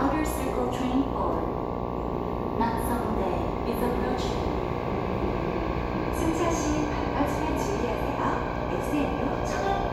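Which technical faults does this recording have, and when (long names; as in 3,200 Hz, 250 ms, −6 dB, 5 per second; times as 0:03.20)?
mains buzz 60 Hz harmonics 19 −32 dBFS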